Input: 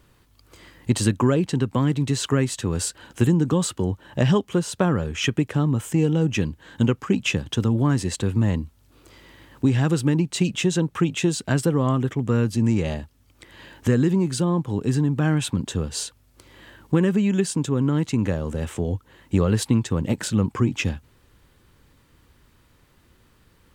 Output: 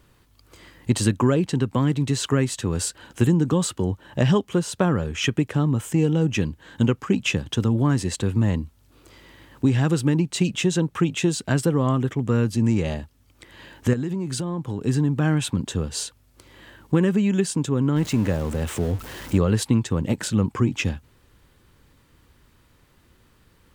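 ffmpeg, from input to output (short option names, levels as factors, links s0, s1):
-filter_complex "[0:a]asettb=1/sr,asplit=3[s0][s1][s2];[s0]atrim=end=13.934[s3];[s1]atrim=start=13.93:end=14.85,asetpts=PTS-STARTPTS,afade=t=in:d=0.004:c=qsin,afade=t=out:st=0.916:d=0.004:c=qsin,acompressor=threshold=0.0708:ratio=6:attack=3.2:release=140:knee=1:detection=peak[s4];[s2]atrim=start=14.846[s5];[s3][s4]acrossfade=d=0.004:c1=hsin:c2=qsin[s6];[s6][s5]acrossfade=d=0.004:c1=qsin:c2=hsin,asettb=1/sr,asplit=3[s7][s8][s9];[s7]atrim=end=17.964[s10];[s8]atrim=start=17.96:end=19.38,asetpts=PTS-STARTPTS,afade=t=in:d=0.004:c=qsin,afade=t=out:st=1.416:d=0.004:c=qsin,aeval=exprs='val(0)+0.5*0.0237*sgn(val(0))':c=same[s11];[s9]atrim=start=19.376[s12];[s10][s11]acrossfade=d=0.004:c1=hsin:c2=qsin[s13];[s13][s12]acrossfade=d=0.004:c1=qsin:c2=hsin"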